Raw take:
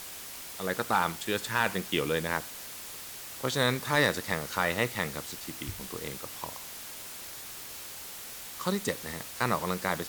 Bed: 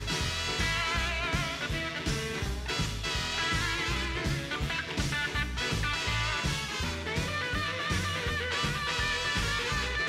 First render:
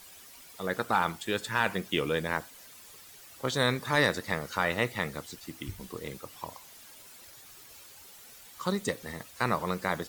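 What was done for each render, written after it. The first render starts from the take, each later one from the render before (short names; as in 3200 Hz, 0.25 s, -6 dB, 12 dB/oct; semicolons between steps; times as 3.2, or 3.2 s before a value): denoiser 11 dB, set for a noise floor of -43 dBFS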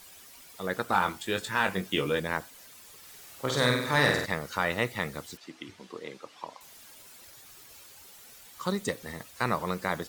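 0.87–2.2 doubler 21 ms -7 dB; 2.98–4.26 flutter echo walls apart 8.4 m, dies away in 0.73 s; 5.37–6.61 BPF 260–5000 Hz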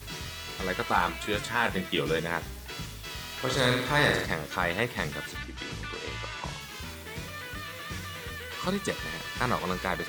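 add bed -7.5 dB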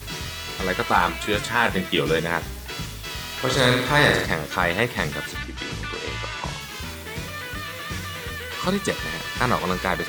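gain +6.5 dB; limiter -3 dBFS, peak gain reduction 1 dB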